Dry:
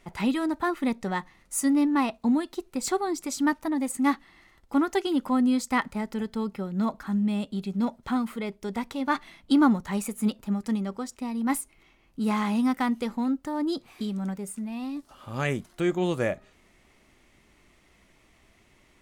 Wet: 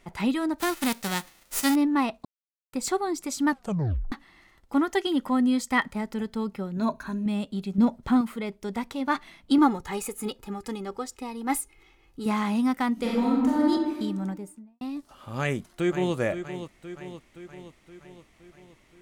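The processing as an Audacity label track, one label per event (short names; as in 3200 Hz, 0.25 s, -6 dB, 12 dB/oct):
0.580000	1.740000	spectral whitening exponent 0.3
2.250000	2.730000	mute
3.490000	3.490000	tape stop 0.63 s
4.780000	5.950000	small resonant body resonances 1900/3200 Hz, height 11 dB
6.760000	7.260000	ripple EQ crests per octave 1.5, crest to trough 12 dB
7.780000	8.210000	low shelf 460 Hz +7.5 dB
9.580000	12.260000	comb 2.4 ms, depth 66%
12.930000	13.700000	reverb throw, RT60 1.4 s, DRR -5 dB
14.210000	14.810000	studio fade out
15.400000	16.150000	echo throw 0.52 s, feedback 60%, level -10 dB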